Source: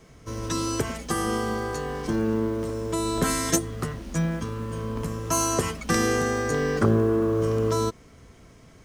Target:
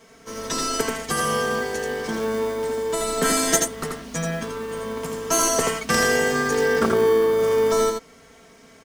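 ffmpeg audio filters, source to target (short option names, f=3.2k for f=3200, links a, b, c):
-filter_complex "[0:a]highpass=f=580:p=1,aecho=1:1:4.4:0.63,asplit=2[a][b];[b]acrusher=samples=33:mix=1:aa=0.000001,volume=-9dB[c];[a][c]amix=inputs=2:normalize=0,aecho=1:1:83:0.631,volume=3dB"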